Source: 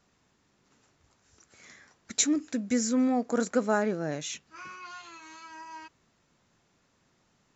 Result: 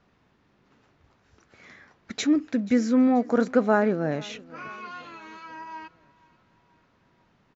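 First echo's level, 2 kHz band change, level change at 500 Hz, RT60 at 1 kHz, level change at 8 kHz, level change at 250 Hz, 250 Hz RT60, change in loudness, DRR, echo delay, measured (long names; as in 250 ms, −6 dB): −23.0 dB, +4.0 dB, +5.5 dB, no reverb audible, can't be measured, +5.5 dB, no reverb audible, +5.0 dB, no reverb audible, 483 ms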